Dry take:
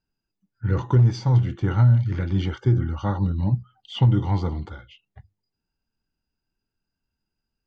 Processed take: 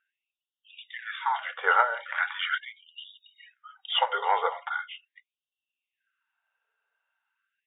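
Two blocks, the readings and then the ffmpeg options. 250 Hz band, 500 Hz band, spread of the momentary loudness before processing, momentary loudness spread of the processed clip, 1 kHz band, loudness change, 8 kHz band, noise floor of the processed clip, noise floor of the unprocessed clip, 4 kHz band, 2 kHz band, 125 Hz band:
under -35 dB, -3.0 dB, 11 LU, 21 LU, +8.0 dB, -5.5 dB, no reading, under -85 dBFS, -84 dBFS, +7.0 dB, +13.0 dB, under -40 dB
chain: -af "equalizer=f=1500:w=1.2:g=10,afftfilt=real='re*between(b*sr/4096,160,3800)':imag='im*between(b*sr/4096,160,3800)':win_size=4096:overlap=0.75,afftfilt=real='re*gte(b*sr/1024,400*pow(2700/400,0.5+0.5*sin(2*PI*0.4*pts/sr)))':imag='im*gte(b*sr/1024,400*pow(2700/400,0.5+0.5*sin(2*PI*0.4*pts/sr)))':win_size=1024:overlap=0.75,volume=1.88"

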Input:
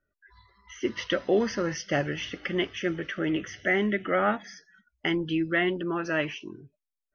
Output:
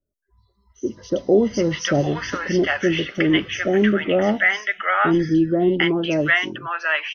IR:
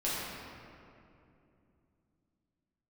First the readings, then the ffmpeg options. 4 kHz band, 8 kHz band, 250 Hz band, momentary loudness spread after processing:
+8.0 dB, no reading, +9.5 dB, 8 LU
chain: -filter_complex "[0:a]dynaudnorm=f=420:g=5:m=3.76,acrossover=split=760|4800[s0][s1][s2];[s2]adelay=60[s3];[s1]adelay=750[s4];[s0][s4][s3]amix=inputs=3:normalize=0"

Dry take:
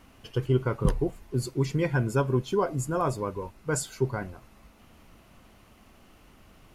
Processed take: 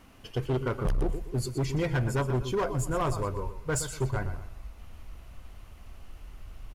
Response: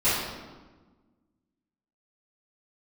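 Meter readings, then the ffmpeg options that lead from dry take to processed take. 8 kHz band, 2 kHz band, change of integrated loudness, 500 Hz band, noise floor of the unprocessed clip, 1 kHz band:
0.0 dB, -1.0 dB, -2.0 dB, -3.0 dB, -57 dBFS, -1.5 dB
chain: -af "aecho=1:1:121|242|363:0.266|0.0851|0.0272,asubboost=boost=7.5:cutoff=76,asoftclip=type=hard:threshold=0.0708"

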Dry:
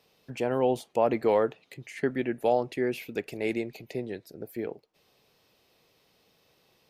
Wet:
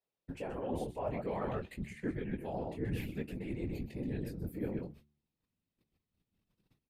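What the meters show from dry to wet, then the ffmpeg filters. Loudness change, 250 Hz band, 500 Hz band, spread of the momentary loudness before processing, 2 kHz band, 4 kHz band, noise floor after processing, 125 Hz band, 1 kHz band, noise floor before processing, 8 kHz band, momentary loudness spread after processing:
-10.0 dB, -6.0 dB, -13.0 dB, 15 LU, -11.0 dB, -11.5 dB, under -85 dBFS, +1.0 dB, -12.0 dB, -68 dBFS, -9.5 dB, 5 LU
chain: -filter_complex "[0:a]asubboost=boost=11.5:cutoff=160,flanger=delay=17.5:depth=7:speed=0.57,asplit=2[s0][s1];[s1]adelay=128.3,volume=0.398,highshelf=f=4000:g=-2.89[s2];[s0][s2]amix=inputs=2:normalize=0,areverse,acompressor=threshold=0.0141:ratio=12,areverse,aemphasis=mode=reproduction:type=50fm,aexciter=amount=1.8:drive=9.7:freq=7900,agate=range=0.0398:threshold=0.00126:ratio=16:detection=peak,flanger=delay=3.7:depth=3.7:regen=-52:speed=1.5:shape=triangular,afftfilt=real='hypot(re,im)*cos(2*PI*random(0))':imag='hypot(re,im)*sin(2*PI*random(1))':win_size=512:overlap=0.75,bandreject=f=73.3:t=h:w=4,bandreject=f=146.6:t=h:w=4,bandreject=f=219.9:t=h:w=4,bandreject=f=293.2:t=h:w=4,bandreject=f=366.5:t=h:w=4,volume=4.73"

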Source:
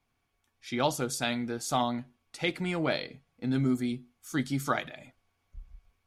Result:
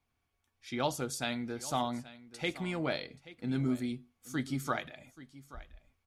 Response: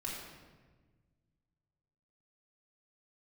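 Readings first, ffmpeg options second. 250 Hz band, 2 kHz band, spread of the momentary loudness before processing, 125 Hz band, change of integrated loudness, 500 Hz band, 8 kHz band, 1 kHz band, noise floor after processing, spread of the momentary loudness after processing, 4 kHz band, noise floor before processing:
-4.5 dB, -4.5 dB, 13 LU, -4.0 dB, -4.5 dB, -4.5 dB, -4.5 dB, -4.5 dB, -81 dBFS, 18 LU, -4.5 dB, -78 dBFS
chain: -filter_complex "[0:a]equalizer=f=77:w=3.6:g=7,asplit=2[s0][s1];[s1]aecho=0:1:830:0.133[s2];[s0][s2]amix=inputs=2:normalize=0,volume=0.596"

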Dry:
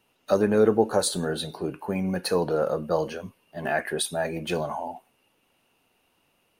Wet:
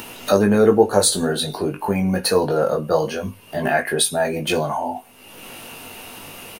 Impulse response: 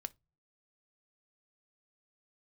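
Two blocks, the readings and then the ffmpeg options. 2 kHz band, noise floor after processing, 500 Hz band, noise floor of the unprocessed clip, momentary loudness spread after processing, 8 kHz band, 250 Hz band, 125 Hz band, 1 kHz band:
+7.5 dB, -45 dBFS, +6.0 dB, -69 dBFS, 21 LU, +10.5 dB, +7.0 dB, +7.0 dB, +7.5 dB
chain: -filter_complex "[0:a]highshelf=f=5700:g=5.5,acompressor=mode=upward:threshold=0.0631:ratio=2.5,asplit=2[s0][s1];[s1]adelay=20,volume=0.562[s2];[s0][s2]amix=inputs=2:normalize=0,asplit=2[s3][s4];[1:a]atrim=start_sample=2205[s5];[s4][s5]afir=irnorm=-1:irlink=0,volume=3.16[s6];[s3][s6]amix=inputs=2:normalize=0,volume=0.562"

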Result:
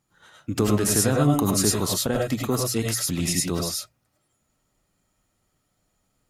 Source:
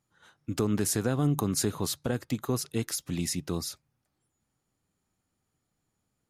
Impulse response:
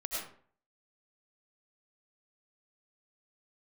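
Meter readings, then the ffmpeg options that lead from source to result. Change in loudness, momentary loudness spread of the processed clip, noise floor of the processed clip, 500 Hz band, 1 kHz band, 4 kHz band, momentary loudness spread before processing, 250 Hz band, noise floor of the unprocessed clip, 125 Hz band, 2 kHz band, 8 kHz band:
+7.0 dB, 8 LU, -73 dBFS, +7.5 dB, +8.5 dB, +8.5 dB, 9 LU, +6.0 dB, -81 dBFS, +5.5 dB, +8.0 dB, +9.0 dB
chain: -filter_complex "[0:a]bandreject=f=60:t=h:w=6,bandreject=f=120:t=h:w=6[s0];[1:a]atrim=start_sample=2205,afade=t=out:st=0.16:d=0.01,atrim=end_sample=7497[s1];[s0][s1]afir=irnorm=-1:irlink=0,volume=2.51"

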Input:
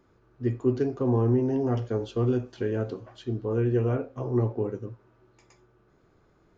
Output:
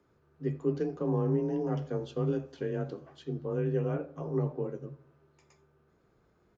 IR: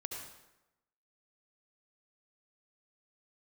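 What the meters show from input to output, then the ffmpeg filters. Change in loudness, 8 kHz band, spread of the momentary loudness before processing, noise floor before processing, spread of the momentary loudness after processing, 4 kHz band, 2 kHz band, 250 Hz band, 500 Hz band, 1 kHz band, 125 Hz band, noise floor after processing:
-5.5 dB, no reading, 9 LU, -63 dBFS, 9 LU, -5.5 dB, -5.0 dB, -5.5 dB, -5.0 dB, -5.0 dB, -6.0 dB, -69 dBFS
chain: -filter_complex "[0:a]asplit=2[s0][s1];[s1]adelay=83,lowpass=f=2000:p=1,volume=0.126,asplit=2[s2][s3];[s3]adelay=83,lowpass=f=2000:p=1,volume=0.54,asplit=2[s4][s5];[s5]adelay=83,lowpass=f=2000:p=1,volume=0.54,asplit=2[s6][s7];[s7]adelay=83,lowpass=f=2000:p=1,volume=0.54,asplit=2[s8][s9];[s9]adelay=83,lowpass=f=2000:p=1,volume=0.54[s10];[s0][s2][s4][s6][s8][s10]amix=inputs=6:normalize=0,afreqshift=27,volume=0.531"

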